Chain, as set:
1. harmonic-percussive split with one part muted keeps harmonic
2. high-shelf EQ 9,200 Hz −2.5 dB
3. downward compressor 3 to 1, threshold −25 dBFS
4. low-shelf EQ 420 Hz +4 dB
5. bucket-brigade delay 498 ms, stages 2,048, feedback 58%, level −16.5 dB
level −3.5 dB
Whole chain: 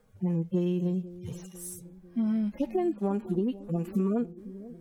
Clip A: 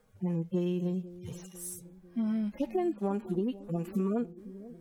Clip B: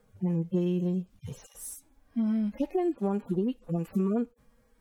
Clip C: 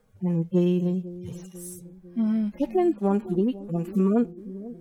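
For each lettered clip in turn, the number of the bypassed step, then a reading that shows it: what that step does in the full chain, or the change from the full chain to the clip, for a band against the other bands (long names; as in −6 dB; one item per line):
4, 8 kHz band +2.5 dB
5, echo-to-direct ratio −23.5 dB to none audible
3, 8 kHz band −5.0 dB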